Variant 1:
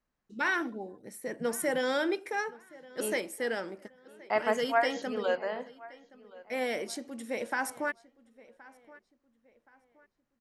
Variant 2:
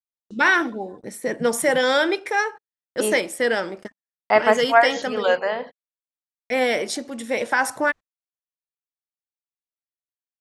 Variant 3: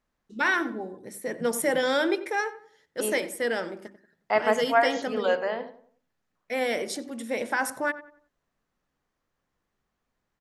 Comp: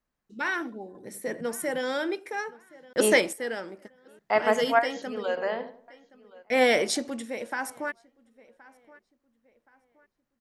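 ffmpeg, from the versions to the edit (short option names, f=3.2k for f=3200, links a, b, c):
-filter_complex "[2:a]asplit=3[a][b][c];[1:a]asplit=2[d][e];[0:a]asplit=6[f][g][h][i][j][k];[f]atrim=end=0.952[l];[a]atrim=start=0.948:end=1.412[m];[g]atrim=start=1.408:end=2.932[n];[d]atrim=start=2.928:end=3.332[o];[h]atrim=start=3.328:end=4.192[p];[b]atrim=start=4.188:end=4.792[q];[i]atrim=start=4.788:end=5.372[r];[c]atrim=start=5.368:end=5.882[s];[j]atrim=start=5.878:end=6.61[t];[e]atrim=start=6.37:end=7.32[u];[k]atrim=start=7.08[v];[l][m]acrossfade=d=0.004:c1=hsin:c2=hsin[w];[w][n]acrossfade=d=0.004:c1=hsin:c2=hsin[x];[x][o]acrossfade=d=0.004:c1=hsin:c2=hsin[y];[y][p]acrossfade=d=0.004:c1=hsin:c2=hsin[z];[z][q]acrossfade=d=0.004:c1=hsin:c2=hsin[aa];[aa][r]acrossfade=d=0.004:c1=hsin:c2=hsin[ab];[ab][s]acrossfade=d=0.004:c1=hsin:c2=hsin[ac];[ac][t]acrossfade=d=0.004:c1=hsin:c2=hsin[ad];[ad][u]acrossfade=d=0.24:c1=tri:c2=tri[ae];[ae][v]acrossfade=d=0.24:c1=tri:c2=tri"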